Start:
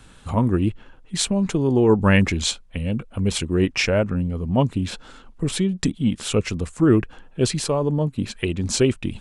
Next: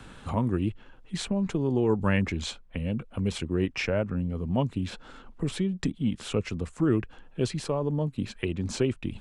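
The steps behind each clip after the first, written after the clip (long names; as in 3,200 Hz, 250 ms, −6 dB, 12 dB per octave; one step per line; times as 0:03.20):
high-shelf EQ 5,100 Hz −9 dB
multiband upward and downward compressor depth 40%
level −7 dB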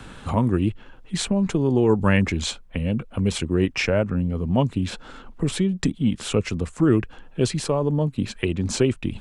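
dynamic equaliser 8,500 Hz, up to +4 dB, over −53 dBFS, Q 0.9
level +6 dB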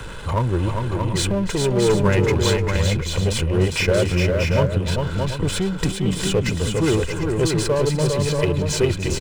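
comb filter 2 ms, depth 63%
power curve on the samples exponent 0.7
on a send: multi-tap delay 300/403/630/741 ms −13.5/−4.5/−5/−11.5 dB
on the sum: level −4 dB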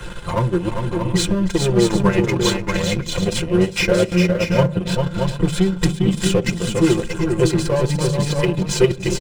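comb filter 5.7 ms, depth 90%
transient designer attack +4 dB, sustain −12 dB
on a send at −18.5 dB: convolution reverb RT60 0.45 s, pre-delay 3 ms
on the sum: level −1 dB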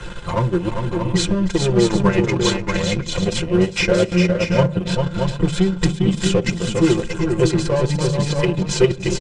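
low-pass filter 8,300 Hz 24 dB per octave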